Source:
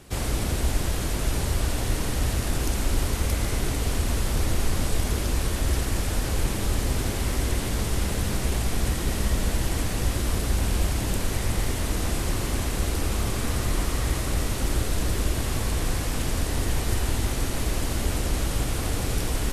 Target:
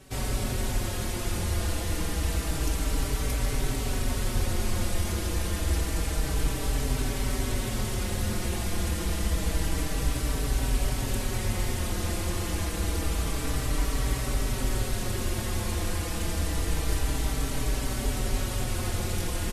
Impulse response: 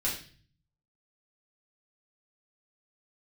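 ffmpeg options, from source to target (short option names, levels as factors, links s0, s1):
-filter_complex "[0:a]asplit=2[s0][s1];[s1]adelay=23,volume=0.251[s2];[s0][s2]amix=inputs=2:normalize=0,asplit=2[s3][s4];[s4]adelay=4.8,afreqshift=-0.28[s5];[s3][s5]amix=inputs=2:normalize=1"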